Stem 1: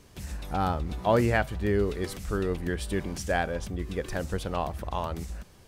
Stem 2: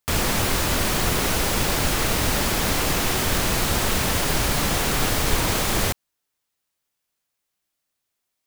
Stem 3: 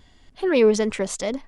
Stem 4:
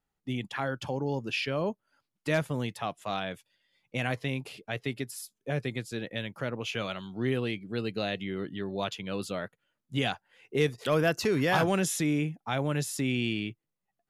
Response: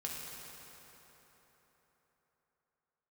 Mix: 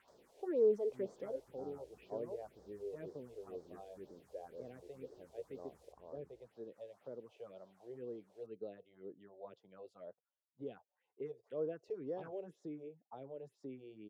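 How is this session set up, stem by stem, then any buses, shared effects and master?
-14.0 dB, 1.05 s, no send, dry
-15.0 dB, 0.00 s, no send, pre-emphasis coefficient 0.9; requantised 6-bit, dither triangular
-5.5 dB, 0.00 s, no send, limiter -15.5 dBFS, peak gain reduction 7.5 dB
-8.5 dB, 0.65 s, no send, dry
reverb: off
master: phaser stages 4, 2 Hz, lowest notch 200–2600 Hz; auto-wah 450–1200 Hz, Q 2.7, down, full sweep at -39.5 dBFS

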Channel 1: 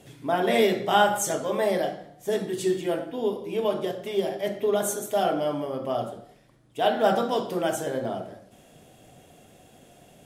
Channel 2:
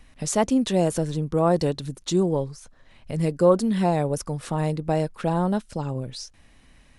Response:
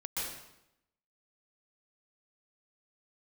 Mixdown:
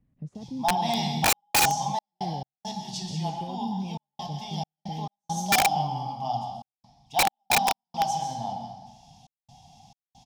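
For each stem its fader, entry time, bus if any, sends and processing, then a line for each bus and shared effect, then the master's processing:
-1.5 dB, 0.35 s, send -5.5 dB, EQ curve 120 Hz 0 dB, 230 Hz -5 dB, 370 Hz -29 dB, 570 Hz -24 dB, 820 Hz +12 dB, 1400 Hz -26 dB, 2100 Hz -13 dB, 5400 Hz +10 dB, 8000 Hz -11 dB, 13000 Hz -17 dB
-4.5 dB, 0.00 s, no send, limiter -16.5 dBFS, peak gain reduction 10.5 dB; band-pass 150 Hz, Q 1.8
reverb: on, RT60 0.85 s, pre-delay 0.116 s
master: step gate "xxxxxx.xx.x." 68 bpm -60 dB; wrapped overs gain 15 dB

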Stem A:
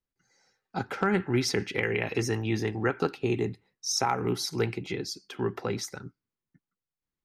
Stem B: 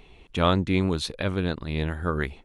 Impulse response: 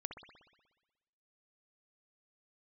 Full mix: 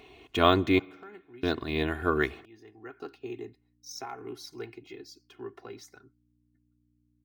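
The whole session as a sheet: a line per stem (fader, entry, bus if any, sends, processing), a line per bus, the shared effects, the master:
-14.0 dB, 0.00 s, no send, hum 60 Hz, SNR 19 dB; auto duck -15 dB, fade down 1.70 s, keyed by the second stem
-0.5 dB, 0.00 s, muted 0.79–1.43, send -16 dB, dry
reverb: on, RT60 1.2 s, pre-delay 60 ms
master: HPF 130 Hz 12 dB/oct; comb 2.8 ms, depth 71%; decimation joined by straight lines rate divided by 2×

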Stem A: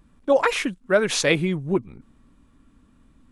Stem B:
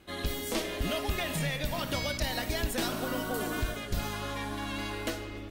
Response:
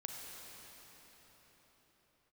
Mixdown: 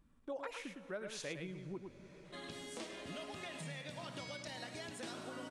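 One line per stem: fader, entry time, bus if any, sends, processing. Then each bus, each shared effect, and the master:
-14.5 dB, 0.00 s, send -12.5 dB, echo send -6 dB, dry
-5.0 dB, 2.25 s, no send, echo send -12.5 dB, elliptic band-pass 120–9000 Hz, stop band 40 dB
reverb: on, pre-delay 33 ms
echo: echo 0.107 s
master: compressor 2:1, threshold -50 dBFS, peak gain reduction 13 dB

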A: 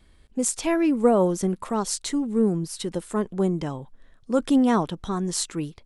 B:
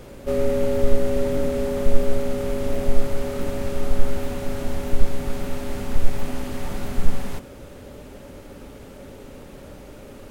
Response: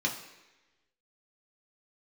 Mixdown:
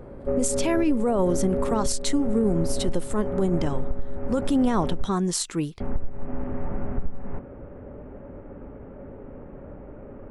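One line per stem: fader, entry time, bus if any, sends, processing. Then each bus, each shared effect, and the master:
+2.5 dB, 0.00 s, no send, gate -51 dBFS, range -14 dB
+0.5 dB, 0.00 s, muted 5.1–5.8, no send, compressor 12:1, threshold -19 dBFS, peak gain reduction 15 dB; Gaussian blur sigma 5.5 samples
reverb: off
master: limiter -14 dBFS, peak gain reduction 11 dB

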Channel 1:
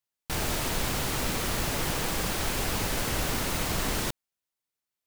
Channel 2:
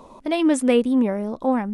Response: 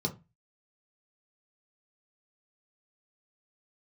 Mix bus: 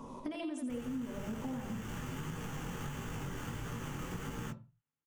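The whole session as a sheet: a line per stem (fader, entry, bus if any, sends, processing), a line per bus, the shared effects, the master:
-6.5 dB, 0.40 s, send -8 dB, no echo send, sample-rate reducer 5100 Hz, jitter 0%; chorus 1.5 Hz, delay 17 ms, depth 6.9 ms
-3.0 dB, 0.00 s, send -9.5 dB, echo send -6.5 dB, compressor 6:1, threshold -27 dBFS, peak gain reduction 13.5 dB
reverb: on, RT60 0.25 s, pre-delay 3 ms
echo: feedback echo 85 ms, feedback 49%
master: compressor 6:1, threshold -37 dBFS, peak gain reduction 15 dB

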